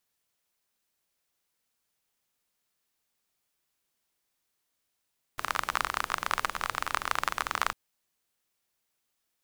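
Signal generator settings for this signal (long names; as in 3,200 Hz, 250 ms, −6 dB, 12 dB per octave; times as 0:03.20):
rain-like ticks over hiss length 2.35 s, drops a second 29, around 1,200 Hz, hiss −14.5 dB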